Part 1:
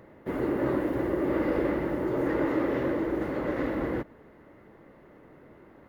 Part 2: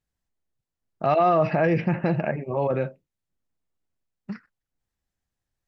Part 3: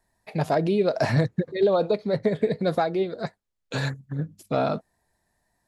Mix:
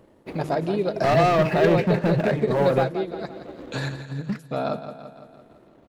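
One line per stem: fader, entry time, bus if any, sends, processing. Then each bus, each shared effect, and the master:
−0.5 dB, 0.00 s, no send, no echo send, running median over 25 samples; automatic ducking −10 dB, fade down 0.70 s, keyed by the third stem
−5.0 dB, 0.00 s, no send, no echo send, leveller curve on the samples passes 3
−0.5 dB, 0.00 s, no send, echo send −9.5 dB, shaped tremolo saw down 0.86 Hz, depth 30%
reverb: not used
echo: repeating echo 169 ms, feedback 57%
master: mains-hum notches 50/100/150 Hz; transient designer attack 0 dB, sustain −4 dB

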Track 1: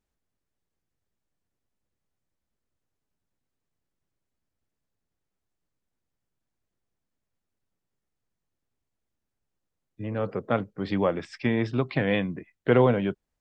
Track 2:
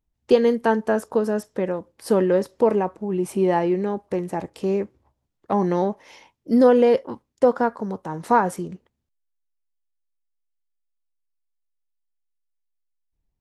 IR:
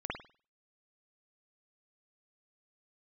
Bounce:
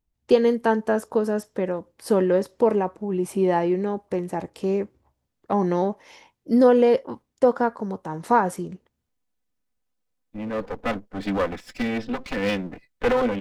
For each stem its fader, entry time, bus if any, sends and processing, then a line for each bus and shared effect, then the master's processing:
+1.5 dB, 0.35 s, no send, lower of the sound and its delayed copy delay 4 ms
−1.0 dB, 0.00 s, no send, no processing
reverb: not used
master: no processing

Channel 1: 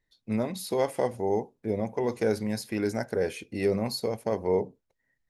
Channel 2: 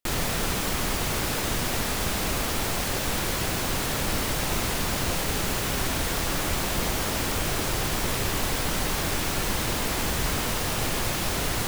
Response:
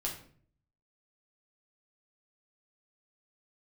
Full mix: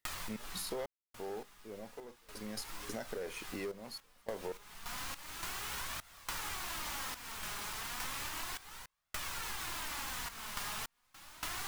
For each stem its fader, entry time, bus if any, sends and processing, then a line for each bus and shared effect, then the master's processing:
−4.0 dB, 0.00 s, no send, high-pass filter 340 Hz 6 dB per octave; leveller curve on the samples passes 2; gate pattern "xx.xx.xxxx" 83 BPM −24 dB
+1.5 dB, 0.00 s, send −15 dB, low shelf with overshoot 720 Hz −9.5 dB, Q 1.5; flanger 0.33 Hz, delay 1.4 ms, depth 3.6 ms, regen +48%; automatic ducking −22 dB, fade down 0.35 s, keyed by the first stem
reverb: on, RT60 0.50 s, pre-delay 5 ms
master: sample-and-hold tremolo, depth 100%; downward compressor 6 to 1, threshold −38 dBFS, peak gain reduction 13.5 dB

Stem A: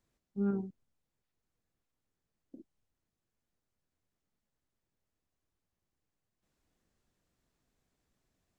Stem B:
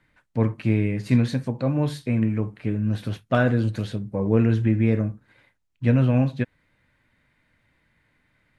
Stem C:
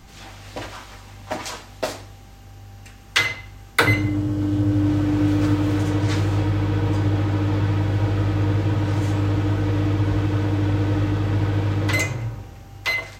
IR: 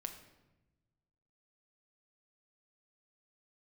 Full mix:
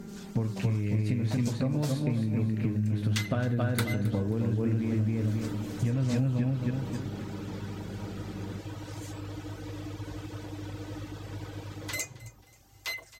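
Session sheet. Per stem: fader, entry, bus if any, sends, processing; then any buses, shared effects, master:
−4.0 dB, 0.00 s, bus A, no send, no echo send, compressor on every frequency bin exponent 0.2
+1.5 dB, 0.00 s, bus A, no send, echo send −11 dB, no processing
−14.0 dB, 0.00 s, no bus, no send, echo send −20 dB, bass and treble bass −9 dB, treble +12 dB; reverb reduction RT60 0.82 s
bus A: 0.0 dB, downward compressor, threshold −27 dBFS, peak gain reduction 14.5 dB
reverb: not used
echo: repeating echo 267 ms, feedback 37%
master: low-shelf EQ 190 Hz +8 dB; downward compressor, threshold −24 dBFS, peak gain reduction 8 dB

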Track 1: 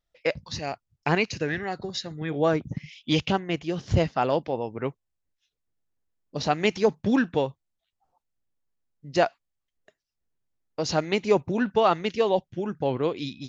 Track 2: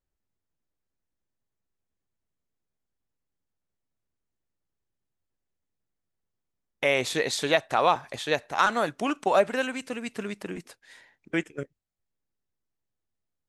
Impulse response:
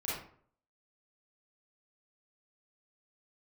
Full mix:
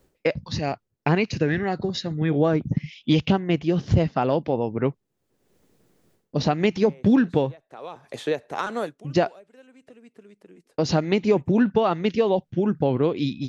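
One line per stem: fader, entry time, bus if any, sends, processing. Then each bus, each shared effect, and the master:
+2.5 dB, 0.00 s, no send, low-pass filter 5,800 Hz 12 dB per octave; noise gate with hold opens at −45 dBFS; downward compressor 3 to 1, threshold −24 dBFS, peak gain reduction 7.5 dB
−7.5 dB, 0.00 s, no send, parametric band 440 Hz +7 dB 0.8 octaves; multiband upward and downward compressor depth 100%; automatic ducking −23 dB, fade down 0.20 s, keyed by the first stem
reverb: not used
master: parametric band 180 Hz +7.5 dB 2.8 octaves

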